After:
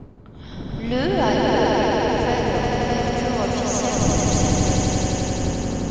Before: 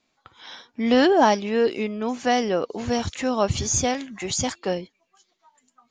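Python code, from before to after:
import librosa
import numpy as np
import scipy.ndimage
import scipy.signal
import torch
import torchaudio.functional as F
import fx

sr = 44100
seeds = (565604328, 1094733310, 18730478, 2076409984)

y = fx.rattle_buzz(x, sr, strikes_db=-31.0, level_db=-29.0)
y = fx.dmg_wind(y, sr, seeds[0], corner_hz=230.0, level_db=-26.0)
y = fx.echo_swell(y, sr, ms=87, loudest=5, wet_db=-3.0)
y = y * 10.0 ** (-5.5 / 20.0)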